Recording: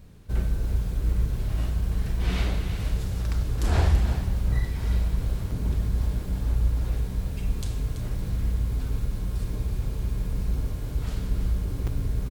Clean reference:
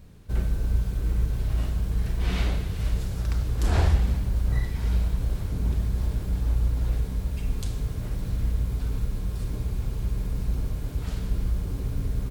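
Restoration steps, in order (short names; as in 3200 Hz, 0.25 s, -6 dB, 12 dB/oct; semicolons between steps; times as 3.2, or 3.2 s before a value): interpolate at 5.51/11.87, 4.7 ms; inverse comb 0.333 s -10 dB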